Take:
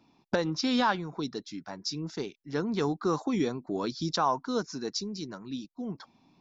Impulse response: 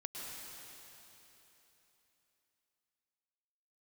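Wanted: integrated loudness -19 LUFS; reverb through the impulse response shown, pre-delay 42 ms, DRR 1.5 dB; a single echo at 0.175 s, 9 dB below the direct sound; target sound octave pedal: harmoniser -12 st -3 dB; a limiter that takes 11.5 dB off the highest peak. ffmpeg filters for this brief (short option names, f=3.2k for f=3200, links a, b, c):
-filter_complex "[0:a]alimiter=level_in=2.5dB:limit=-24dB:level=0:latency=1,volume=-2.5dB,aecho=1:1:175:0.355,asplit=2[a][b];[1:a]atrim=start_sample=2205,adelay=42[c];[b][c]afir=irnorm=-1:irlink=0,volume=-1dB[d];[a][d]amix=inputs=2:normalize=0,asplit=2[e][f];[f]asetrate=22050,aresample=44100,atempo=2,volume=-3dB[g];[e][g]amix=inputs=2:normalize=0,volume=14dB"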